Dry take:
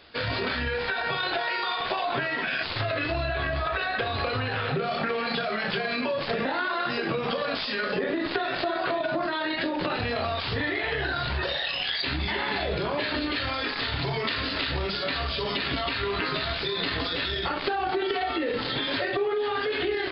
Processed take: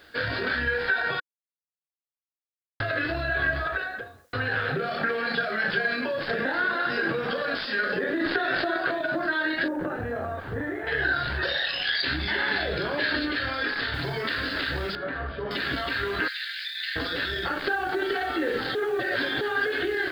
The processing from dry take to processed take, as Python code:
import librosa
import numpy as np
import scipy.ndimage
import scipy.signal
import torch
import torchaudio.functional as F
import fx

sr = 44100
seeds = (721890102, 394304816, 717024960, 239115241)

y = fx.studio_fade_out(x, sr, start_s=3.54, length_s=0.79)
y = fx.echo_throw(y, sr, start_s=6.23, length_s=0.58, ms=300, feedback_pct=60, wet_db=-10.5)
y = fx.env_flatten(y, sr, amount_pct=50, at=(8.2, 8.77))
y = fx.lowpass(y, sr, hz=1100.0, slope=12, at=(9.68, 10.87))
y = fx.high_shelf(y, sr, hz=3400.0, db=7.0, at=(11.42, 13.26))
y = fx.noise_floor_step(y, sr, seeds[0], at_s=13.94, before_db=-66, after_db=-56, tilt_db=0.0)
y = fx.lowpass(y, sr, hz=1400.0, slope=12, at=(14.95, 15.51))
y = fx.steep_highpass(y, sr, hz=1700.0, slope=48, at=(16.28, 16.96))
y = fx.echo_throw(y, sr, start_s=17.53, length_s=0.59, ms=450, feedback_pct=70, wet_db=-9.5)
y = fx.edit(y, sr, fx.silence(start_s=1.2, length_s=1.6),
    fx.reverse_span(start_s=18.75, length_s=0.66), tone=tone)
y = fx.graphic_eq_31(y, sr, hz=(315, 500, 1000, 1600, 2500), db=(4, 3, -4, 12, -4))
y = y * librosa.db_to_amplitude(-2.5)